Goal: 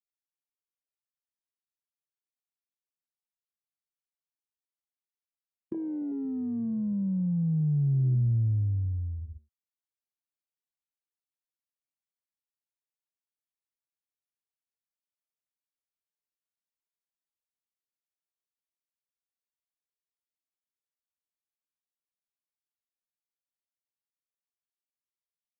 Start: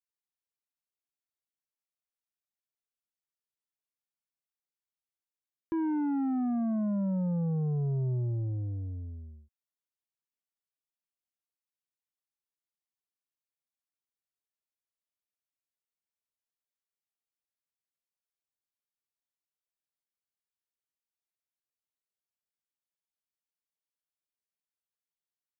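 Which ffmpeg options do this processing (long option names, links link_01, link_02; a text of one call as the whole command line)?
ffmpeg -i in.wav -filter_complex "[0:a]dynaudnorm=framelen=570:gausssize=21:maxgain=4.5dB,afwtdn=0.0708,acrossover=split=150|3000[link_01][link_02][link_03];[link_02]acompressor=threshold=-37dB:ratio=6[link_04];[link_01][link_04][link_03]amix=inputs=3:normalize=0,volume=3dB" out.wav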